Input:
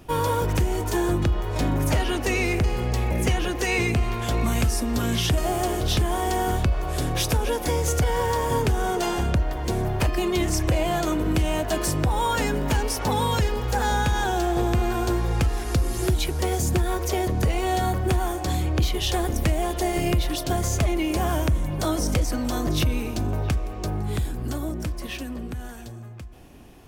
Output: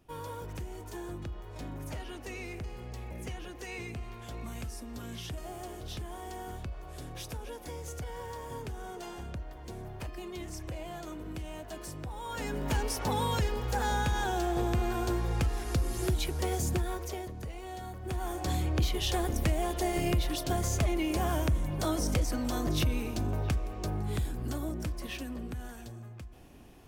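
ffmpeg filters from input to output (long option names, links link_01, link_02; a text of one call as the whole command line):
ffmpeg -i in.wav -af "volume=5dB,afade=type=in:start_time=12.23:duration=0.53:silence=0.298538,afade=type=out:start_time=16.65:duration=0.69:silence=0.281838,afade=type=in:start_time=18:duration=0.47:silence=0.251189" out.wav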